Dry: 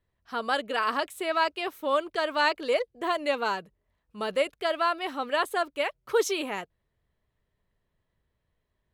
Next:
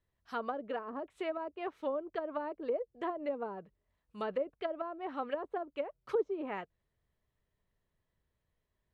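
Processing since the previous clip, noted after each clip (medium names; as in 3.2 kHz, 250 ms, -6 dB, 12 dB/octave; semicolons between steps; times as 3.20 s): low-pass that closes with the level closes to 500 Hz, closed at -23.5 dBFS; trim -5 dB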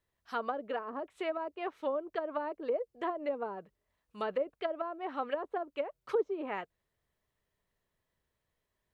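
bass shelf 240 Hz -8 dB; trim +3 dB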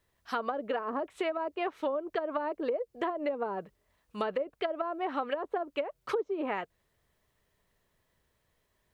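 compression 6:1, threshold -37 dBFS, peak gain reduction 11.5 dB; trim +8.5 dB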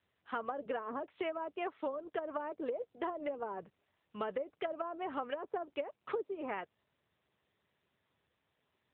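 trim -5 dB; AMR-NB 10.2 kbps 8 kHz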